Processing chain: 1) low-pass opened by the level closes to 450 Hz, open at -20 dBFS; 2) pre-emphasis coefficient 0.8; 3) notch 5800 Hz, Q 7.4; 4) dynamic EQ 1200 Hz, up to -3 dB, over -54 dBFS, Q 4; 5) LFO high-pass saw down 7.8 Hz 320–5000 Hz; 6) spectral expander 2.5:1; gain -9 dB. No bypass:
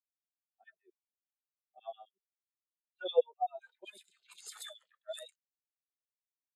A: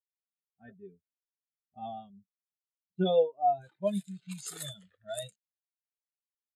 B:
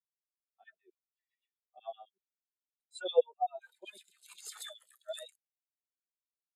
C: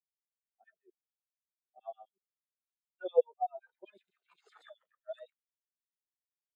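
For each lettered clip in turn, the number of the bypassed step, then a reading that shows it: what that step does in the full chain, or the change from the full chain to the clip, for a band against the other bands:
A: 5, 2 kHz band -5.5 dB; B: 1, loudness change +1.0 LU; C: 2, loudness change +2.0 LU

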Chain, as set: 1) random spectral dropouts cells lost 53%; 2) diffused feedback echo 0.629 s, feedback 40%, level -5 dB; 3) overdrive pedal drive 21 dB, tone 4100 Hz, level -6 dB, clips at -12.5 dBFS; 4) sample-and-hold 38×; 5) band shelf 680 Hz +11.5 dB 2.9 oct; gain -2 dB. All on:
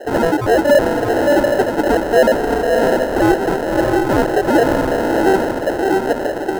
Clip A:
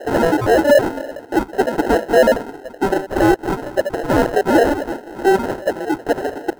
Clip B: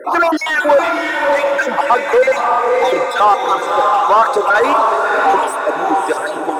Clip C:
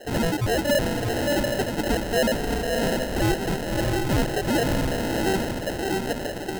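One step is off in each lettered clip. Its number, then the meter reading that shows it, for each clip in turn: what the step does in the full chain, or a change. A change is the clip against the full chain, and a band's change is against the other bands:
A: 2, loudness change -2.0 LU; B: 4, crest factor change -3.0 dB; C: 5, 8 kHz band +8.0 dB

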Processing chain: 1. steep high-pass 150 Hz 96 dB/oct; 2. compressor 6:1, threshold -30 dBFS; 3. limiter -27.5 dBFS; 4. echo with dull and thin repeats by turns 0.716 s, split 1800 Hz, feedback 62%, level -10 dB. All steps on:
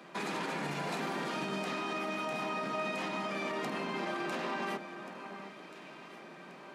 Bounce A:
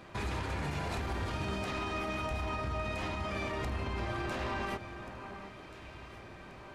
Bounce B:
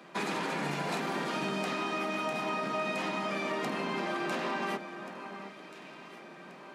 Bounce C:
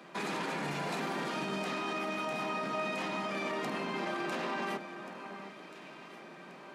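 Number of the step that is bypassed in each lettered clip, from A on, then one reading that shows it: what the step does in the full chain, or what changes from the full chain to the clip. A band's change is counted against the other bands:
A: 1, 125 Hz band +10.5 dB; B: 3, mean gain reduction 2.0 dB; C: 2, mean gain reduction 3.0 dB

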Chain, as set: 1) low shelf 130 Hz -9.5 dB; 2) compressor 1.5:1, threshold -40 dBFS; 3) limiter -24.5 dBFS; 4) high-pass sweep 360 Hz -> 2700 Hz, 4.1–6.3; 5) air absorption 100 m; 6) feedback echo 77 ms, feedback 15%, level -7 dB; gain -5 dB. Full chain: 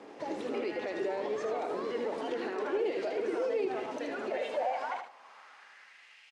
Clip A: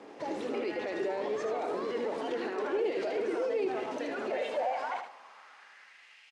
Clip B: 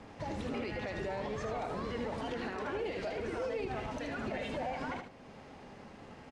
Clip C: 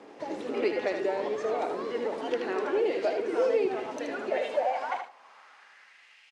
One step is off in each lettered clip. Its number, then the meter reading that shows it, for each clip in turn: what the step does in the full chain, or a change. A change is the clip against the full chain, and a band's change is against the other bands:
2, mean gain reduction 6.0 dB; 4, 500 Hz band -5.0 dB; 3, mean gain reduction 2.5 dB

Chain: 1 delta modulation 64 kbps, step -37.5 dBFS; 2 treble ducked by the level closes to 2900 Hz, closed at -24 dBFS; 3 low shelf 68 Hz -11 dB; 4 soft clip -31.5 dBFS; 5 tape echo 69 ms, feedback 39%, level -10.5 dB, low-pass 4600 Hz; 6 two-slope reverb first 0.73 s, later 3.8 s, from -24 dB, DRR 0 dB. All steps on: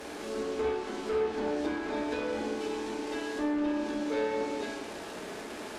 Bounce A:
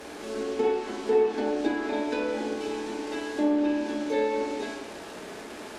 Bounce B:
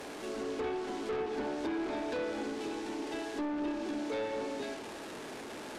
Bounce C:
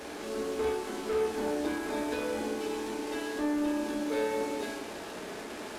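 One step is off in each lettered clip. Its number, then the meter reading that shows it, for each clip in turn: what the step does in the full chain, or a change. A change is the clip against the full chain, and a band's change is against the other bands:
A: 4, distortion -9 dB; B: 6, crest factor change -5.0 dB; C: 2, 8 kHz band +4.0 dB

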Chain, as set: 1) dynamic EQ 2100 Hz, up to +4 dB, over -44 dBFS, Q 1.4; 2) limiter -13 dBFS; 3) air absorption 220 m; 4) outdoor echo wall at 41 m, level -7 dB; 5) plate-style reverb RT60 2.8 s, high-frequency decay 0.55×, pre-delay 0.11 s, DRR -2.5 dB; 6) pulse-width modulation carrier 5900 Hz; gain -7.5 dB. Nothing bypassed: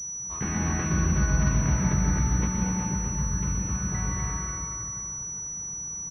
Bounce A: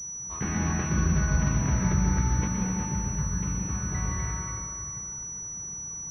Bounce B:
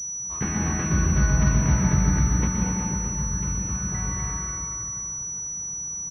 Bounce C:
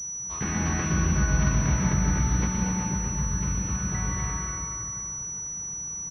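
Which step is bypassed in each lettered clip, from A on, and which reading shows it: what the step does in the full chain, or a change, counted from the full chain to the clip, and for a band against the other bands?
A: 4, momentary loudness spread change +1 LU; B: 2, loudness change +2.5 LU; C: 3, 4 kHz band +4.5 dB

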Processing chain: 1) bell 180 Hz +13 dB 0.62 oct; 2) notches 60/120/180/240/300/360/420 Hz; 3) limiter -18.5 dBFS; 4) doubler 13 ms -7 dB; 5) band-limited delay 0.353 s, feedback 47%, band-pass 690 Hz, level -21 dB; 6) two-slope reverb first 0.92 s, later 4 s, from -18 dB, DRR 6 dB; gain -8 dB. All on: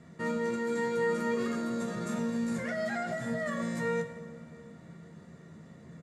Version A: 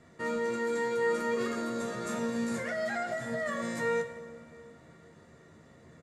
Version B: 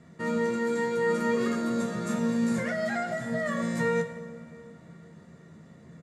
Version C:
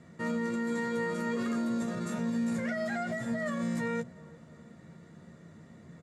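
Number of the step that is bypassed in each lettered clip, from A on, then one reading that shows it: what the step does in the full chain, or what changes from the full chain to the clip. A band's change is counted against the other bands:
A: 1, 125 Hz band -7.0 dB; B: 3, mean gain reduction 2.5 dB; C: 6, crest factor change -2.0 dB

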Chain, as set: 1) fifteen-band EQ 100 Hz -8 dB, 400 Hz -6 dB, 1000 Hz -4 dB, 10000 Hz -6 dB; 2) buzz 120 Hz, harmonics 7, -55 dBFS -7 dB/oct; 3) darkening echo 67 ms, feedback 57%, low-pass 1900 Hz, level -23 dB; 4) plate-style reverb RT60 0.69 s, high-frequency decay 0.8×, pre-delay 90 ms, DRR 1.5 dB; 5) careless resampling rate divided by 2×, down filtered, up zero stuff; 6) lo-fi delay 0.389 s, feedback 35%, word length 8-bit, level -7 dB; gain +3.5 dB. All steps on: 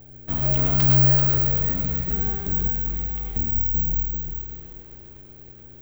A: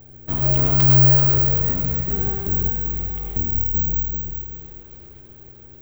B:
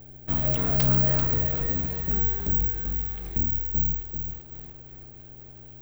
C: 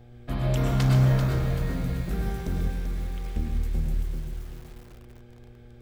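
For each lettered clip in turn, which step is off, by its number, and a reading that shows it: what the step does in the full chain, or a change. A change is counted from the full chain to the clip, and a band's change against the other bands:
1, 2 kHz band -2.5 dB; 4, momentary loudness spread change +8 LU; 5, loudness change -7.0 LU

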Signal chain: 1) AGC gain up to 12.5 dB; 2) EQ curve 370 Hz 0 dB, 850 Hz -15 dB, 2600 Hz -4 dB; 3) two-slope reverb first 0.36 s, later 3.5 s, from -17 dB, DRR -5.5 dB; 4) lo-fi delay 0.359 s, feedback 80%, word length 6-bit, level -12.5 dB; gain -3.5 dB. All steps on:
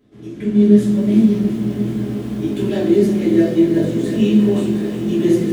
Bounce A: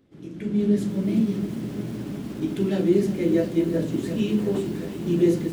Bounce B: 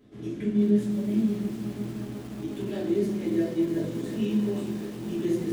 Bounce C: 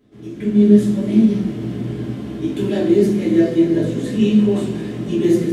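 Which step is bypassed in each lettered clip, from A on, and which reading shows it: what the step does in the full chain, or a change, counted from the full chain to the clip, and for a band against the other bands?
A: 3, 250 Hz band -2.0 dB; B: 1, 1 kHz band +2.0 dB; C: 4, momentary loudness spread change +2 LU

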